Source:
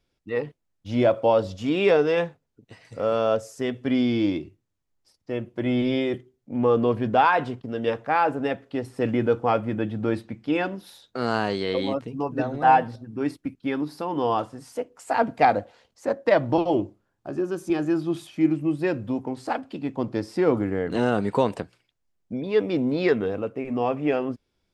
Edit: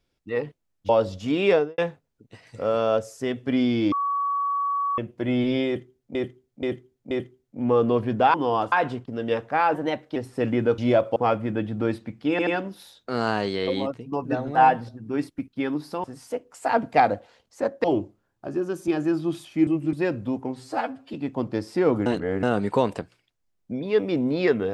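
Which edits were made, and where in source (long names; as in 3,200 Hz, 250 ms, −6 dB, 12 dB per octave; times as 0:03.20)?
0:00.89–0:01.27: move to 0:09.39
0:01.89–0:02.16: fade out and dull
0:04.30–0:05.36: beep over 1,130 Hz −22 dBFS
0:06.05–0:06.53: repeat, 4 plays
0:08.30–0:08.77: play speed 112%
0:10.54: stutter 0.08 s, 3 plays
0:11.85–0:12.19: fade out, to −6.5 dB
0:14.11–0:14.49: move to 0:07.28
0:16.29–0:16.66: remove
0:18.49–0:18.75: reverse
0:19.33–0:19.75: time-stretch 1.5×
0:20.67–0:21.04: reverse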